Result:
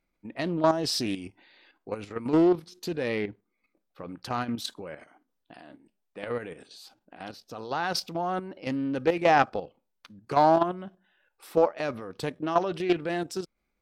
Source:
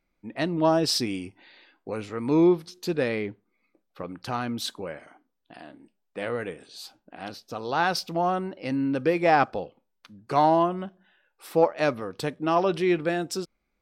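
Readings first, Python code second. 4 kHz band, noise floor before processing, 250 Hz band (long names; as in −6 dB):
−2.5 dB, −76 dBFS, −2.5 dB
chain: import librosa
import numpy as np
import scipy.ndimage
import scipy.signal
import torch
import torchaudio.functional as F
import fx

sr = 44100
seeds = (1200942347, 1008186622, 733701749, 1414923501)

y = fx.level_steps(x, sr, step_db=10)
y = fx.doppler_dist(y, sr, depth_ms=0.26)
y = F.gain(torch.from_numpy(y), 1.5).numpy()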